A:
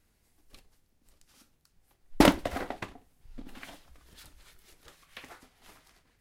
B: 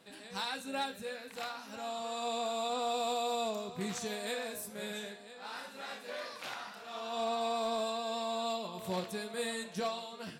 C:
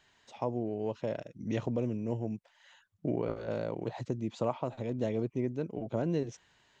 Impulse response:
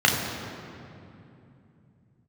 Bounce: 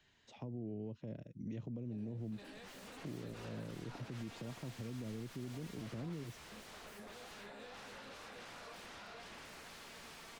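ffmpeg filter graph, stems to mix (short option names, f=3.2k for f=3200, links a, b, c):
-filter_complex "[0:a]adelay=1750,volume=-15.5dB[a];[1:a]aeval=exprs='0.0447*sin(PI/2*8.91*val(0)/0.0447)':c=same,adelay=1850,volume=-16.5dB,asplit=2[b][c];[c]volume=-5.5dB[d];[2:a]acrossover=split=100|300[e][f][g];[e]acompressor=threshold=-58dB:ratio=4[h];[f]acompressor=threshold=-40dB:ratio=4[i];[g]acompressor=threshold=-48dB:ratio=4[j];[h][i][j]amix=inputs=3:normalize=0,equalizer=f=930:w=0.62:g=-9,volume=0.5dB,asplit=2[k][l];[l]apad=whole_len=540159[m];[b][m]sidechaincompress=threshold=-44dB:ratio=4:attack=40:release=1410[n];[a][n]amix=inputs=2:normalize=0,afwtdn=0.00355,acompressor=threshold=-54dB:ratio=6,volume=0dB[o];[d]aecho=0:1:470|940|1410|1880:1|0.25|0.0625|0.0156[p];[k][o][p]amix=inputs=3:normalize=0,lowpass=f=3.3k:p=1,alimiter=level_in=12dB:limit=-24dB:level=0:latency=1:release=58,volume=-12dB"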